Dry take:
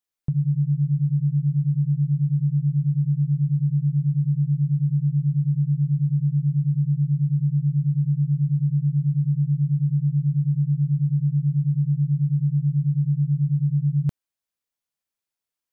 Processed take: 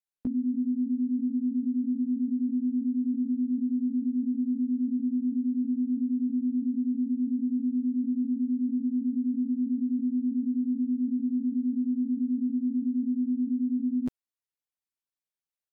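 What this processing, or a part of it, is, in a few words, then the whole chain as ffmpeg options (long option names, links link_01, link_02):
chipmunk voice: -af "asetrate=76340,aresample=44100,atempo=0.577676,volume=-6.5dB"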